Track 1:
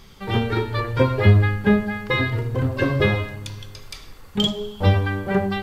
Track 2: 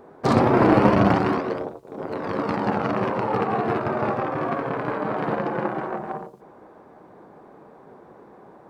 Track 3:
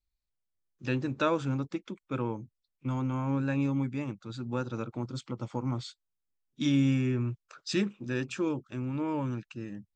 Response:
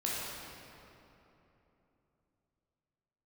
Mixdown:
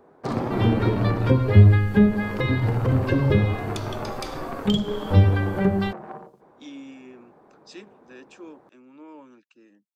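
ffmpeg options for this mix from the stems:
-filter_complex "[0:a]adelay=300,volume=2dB[a];[1:a]volume=-7dB[b];[2:a]highpass=f=270:w=0.5412,highpass=f=270:w=1.3066,volume=-11.5dB[c];[a][b][c]amix=inputs=3:normalize=0,acrossover=split=380[d][e];[e]acompressor=threshold=-29dB:ratio=4[f];[d][f]amix=inputs=2:normalize=0"

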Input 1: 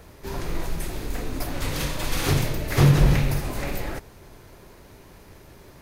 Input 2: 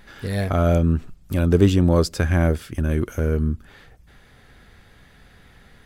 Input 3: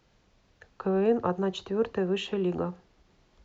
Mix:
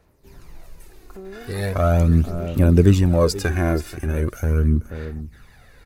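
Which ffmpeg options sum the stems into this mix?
-filter_complex "[0:a]volume=-18dB[a];[1:a]bandreject=f=3.2k:w=6.5,adelay=1250,volume=-1dB,asplit=2[b][c];[c]volume=-15dB[d];[2:a]lowshelf=f=270:g=8.5,adelay=300,volume=-11dB[e];[a][e]amix=inputs=2:normalize=0,bandreject=f=3.3k:w=16,alimiter=level_in=6.5dB:limit=-24dB:level=0:latency=1:release=450,volume=-6.5dB,volume=0dB[f];[d]aecho=0:1:483:1[g];[b][f][g]amix=inputs=3:normalize=0,highshelf=f=7.5k:g=4,aphaser=in_gain=1:out_gain=1:delay=2.9:decay=0.51:speed=0.4:type=sinusoidal"

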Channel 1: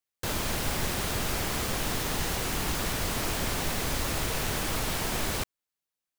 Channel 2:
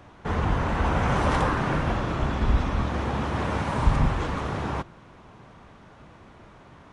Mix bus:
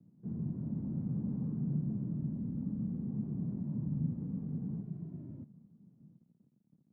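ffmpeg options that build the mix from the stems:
-filter_complex "[0:a]asplit=2[a][b];[b]adelay=2.1,afreqshift=-0.66[c];[a][c]amix=inputs=2:normalize=1,volume=1.5dB[d];[1:a]acrusher=bits=2:mode=log:mix=0:aa=0.000001,asoftclip=type=tanh:threshold=-20dB,volume=-2dB[e];[d][e]amix=inputs=2:normalize=0,acrusher=bits=7:mix=0:aa=0.000001,asuperpass=centerf=180:order=4:qfactor=1.8"

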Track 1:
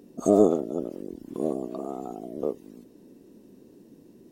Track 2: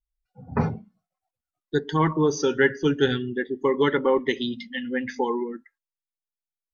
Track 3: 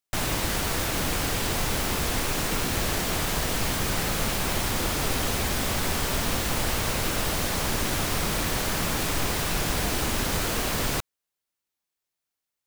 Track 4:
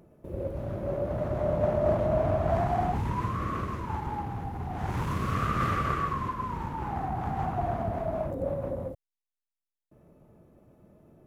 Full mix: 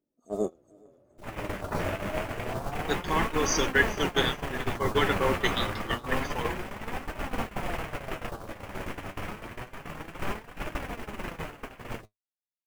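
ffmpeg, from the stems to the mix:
-filter_complex "[0:a]adynamicequalizer=threshold=0.00631:dfrequency=2400:dqfactor=0.7:tfrequency=2400:tqfactor=0.7:attack=5:release=100:ratio=0.375:range=2.5:mode=boostabove:tftype=highshelf,volume=-3.5dB,asplit=2[a][b];[b]volume=-5.5dB[c];[1:a]highpass=f=330:p=1,aemphasis=mode=production:type=75fm,adelay=1150,volume=2dB,asplit=2[d][e];[e]volume=-15.5dB[f];[2:a]afwtdn=0.0316,acontrast=71,adelay=1050,volume=-0.5dB[g];[3:a]volume=-2dB[h];[c][f]amix=inputs=2:normalize=0,aecho=0:1:420|840|1260|1680|2100:1|0.38|0.144|0.0549|0.0209[i];[a][d][g][h][i]amix=inputs=5:normalize=0,agate=range=-25dB:threshold=-19dB:ratio=16:detection=peak,lowshelf=f=300:g=-4.5,flanger=delay=3.1:depth=8.2:regen=56:speed=0.28:shape=triangular"

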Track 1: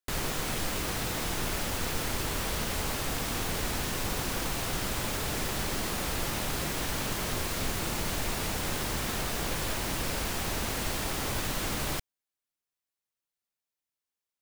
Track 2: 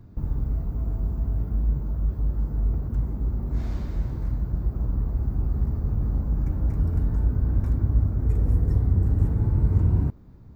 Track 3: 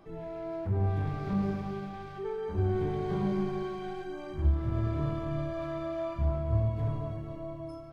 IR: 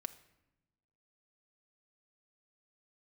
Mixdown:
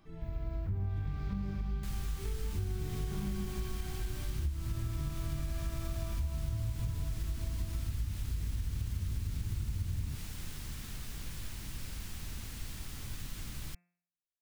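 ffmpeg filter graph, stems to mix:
-filter_complex "[0:a]acontrast=71,lowshelf=f=290:g=9,adelay=1750,volume=-19.5dB[a];[1:a]adelay=50,volume=-9dB[b];[2:a]volume=0dB[c];[a][b][c]amix=inputs=3:normalize=0,equalizer=f=560:w=0.57:g=-13.5,bandreject=f=175.6:t=h:w=4,bandreject=f=351.2:t=h:w=4,bandreject=f=526.8:t=h:w=4,bandreject=f=702.4:t=h:w=4,bandreject=f=878:t=h:w=4,bandreject=f=1.0536k:t=h:w=4,bandreject=f=1.2292k:t=h:w=4,bandreject=f=1.4048k:t=h:w=4,bandreject=f=1.5804k:t=h:w=4,bandreject=f=1.756k:t=h:w=4,bandreject=f=1.9316k:t=h:w=4,bandreject=f=2.1072k:t=h:w=4,bandreject=f=2.2828k:t=h:w=4,bandreject=f=2.4584k:t=h:w=4,bandreject=f=2.634k:t=h:w=4,acompressor=threshold=-31dB:ratio=6"

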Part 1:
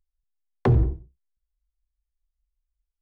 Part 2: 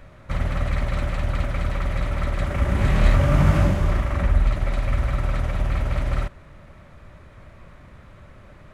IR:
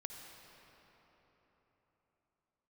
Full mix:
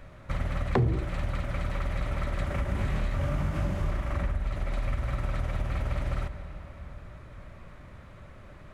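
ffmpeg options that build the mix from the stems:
-filter_complex "[0:a]highpass=90,dynaudnorm=f=290:g=5:m=12.5dB,adelay=100,volume=1.5dB[a];[1:a]alimiter=limit=-12.5dB:level=0:latency=1:release=306,volume=-5dB,asplit=2[b][c];[c]volume=-4dB[d];[2:a]atrim=start_sample=2205[e];[d][e]afir=irnorm=-1:irlink=0[f];[a][b][f]amix=inputs=3:normalize=0,acompressor=threshold=-27dB:ratio=2.5"

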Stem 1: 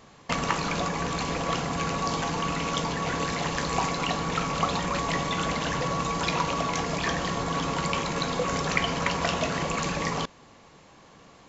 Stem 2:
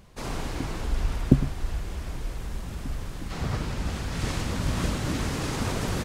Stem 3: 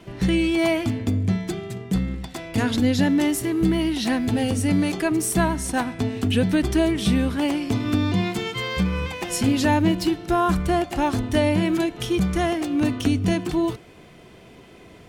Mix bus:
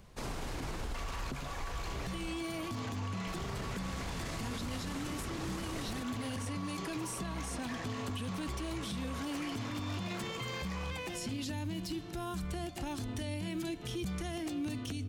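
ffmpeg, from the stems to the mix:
-filter_complex "[0:a]asplit=2[a][b];[b]highpass=f=720:p=1,volume=17dB,asoftclip=type=tanh:threshold=-7dB[c];[a][c]amix=inputs=2:normalize=0,lowpass=f=5k:p=1,volume=-6dB,asoftclip=type=tanh:threshold=-19dB,adelay=650,volume=-17.5dB[d];[1:a]volume=-3.5dB,asplit=3[e][f][g];[e]atrim=end=2.29,asetpts=PTS-STARTPTS,afade=t=out:st=2.286:d=0.004:c=hsin[h];[f]atrim=start=2.29:end=3.27,asetpts=PTS-STARTPTS,volume=0[i];[g]atrim=start=3.27,asetpts=PTS-STARTPTS,afade=t=in:d=0.004:c=hsin[j];[h][i][j]concat=n=3:v=0:a=1[k];[2:a]acrossover=split=220|3000[l][m][n];[m]acompressor=threshold=-31dB:ratio=6[o];[l][o][n]amix=inputs=3:normalize=0,adelay=1850,volume=-5.5dB[p];[d][k][p]amix=inputs=3:normalize=0,acrossover=split=410|7300[q][r][s];[q]acompressor=threshold=-34dB:ratio=4[t];[r]acompressor=threshold=-38dB:ratio=4[u];[s]acompressor=threshold=-49dB:ratio=4[v];[t][u][v]amix=inputs=3:normalize=0,alimiter=level_in=6dB:limit=-24dB:level=0:latency=1:release=28,volume=-6dB"

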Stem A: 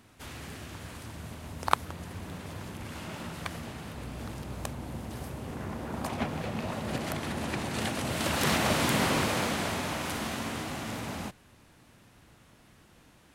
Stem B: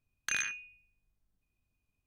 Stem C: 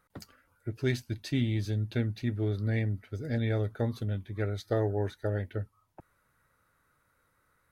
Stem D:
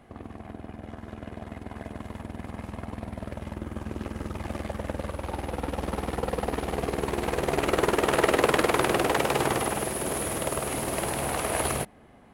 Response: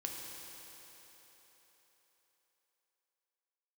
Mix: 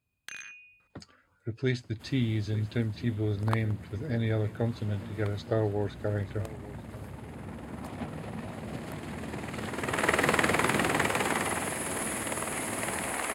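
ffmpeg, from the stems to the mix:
-filter_complex "[0:a]lowshelf=f=490:g=8.5,adelay=1800,volume=-11dB[a];[1:a]acompressor=threshold=-45dB:ratio=3,volume=2dB[b];[2:a]lowpass=f=7.8k:w=0.5412,lowpass=f=7.8k:w=1.3066,adelay=800,volume=0.5dB,asplit=2[c][d];[d]volume=-17dB[e];[3:a]agate=range=-33dB:threshold=-33dB:ratio=3:detection=peak,equalizer=f=125:t=o:w=1:g=-11,equalizer=f=250:t=o:w=1:g=7,equalizer=f=1k:t=o:w=1:g=4,equalizer=f=2k:t=o:w=1:g=11,equalizer=f=8k:t=o:w=1:g=11,adelay=1850,volume=-9.5dB,afade=t=in:st=9.69:d=0.41:silence=0.251189[f];[e]aecho=0:1:886:1[g];[a][b][c][f][g]amix=inputs=5:normalize=0,highpass=63,bandreject=f=5.8k:w=6.1"

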